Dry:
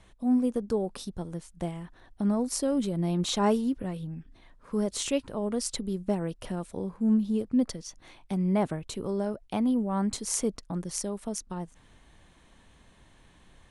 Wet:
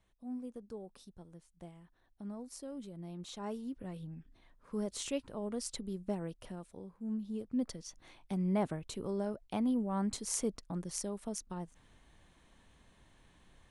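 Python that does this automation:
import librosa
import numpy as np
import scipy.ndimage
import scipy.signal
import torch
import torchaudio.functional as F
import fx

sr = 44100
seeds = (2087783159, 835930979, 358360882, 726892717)

y = fx.gain(x, sr, db=fx.line((3.43, -17.5), (3.97, -8.5), (6.26, -8.5), (6.95, -16.0), (7.88, -6.0)))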